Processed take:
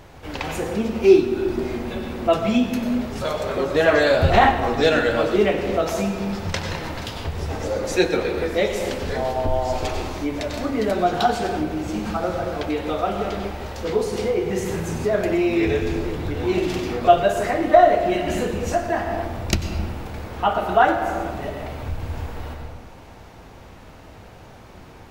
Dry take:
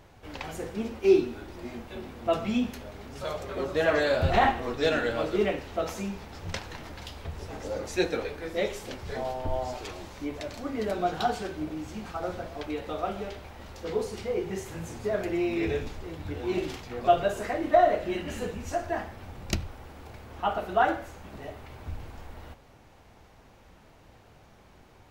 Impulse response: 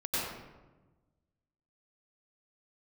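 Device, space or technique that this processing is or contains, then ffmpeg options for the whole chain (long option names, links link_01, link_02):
ducked reverb: -filter_complex "[0:a]asplit=3[link_01][link_02][link_03];[1:a]atrim=start_sample=2205[link_04];[link_02][link_04]afir=irnorm=-1:irlink=0[link_05];[link_03]apad=whole_len=1107095[link_06];[link_05][link_06]sidechaincompress=threshold=-35dB:ratio=8:attack=24:release=277,volume=-7dB[link_07];[link_01][link_07]amix=inputs=2:normalize=0,volume=7dB"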